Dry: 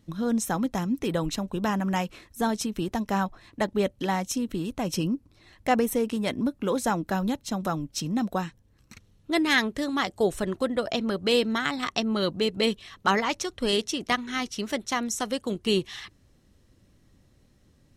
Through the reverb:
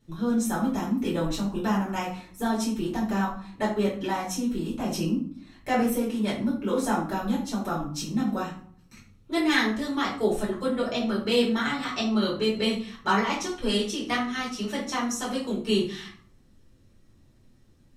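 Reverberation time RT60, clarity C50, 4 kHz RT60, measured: 0.50 s, 5.5 dB, 0.35 s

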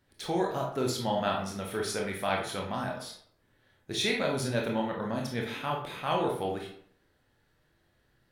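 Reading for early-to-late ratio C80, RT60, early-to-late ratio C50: 9.5 dB, 0.65 s, 5.5 dB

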